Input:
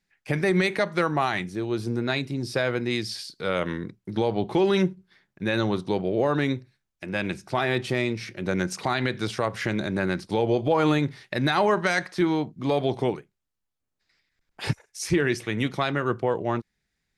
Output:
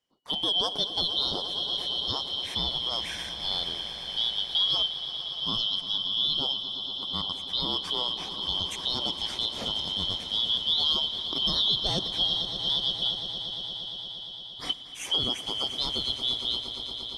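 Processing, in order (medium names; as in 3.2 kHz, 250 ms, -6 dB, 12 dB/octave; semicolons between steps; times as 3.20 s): four frequency bands reordered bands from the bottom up 2413; on a send: echo with a slow build-up 116 ms, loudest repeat 5, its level -14 dB; on the sum: trim -5 dB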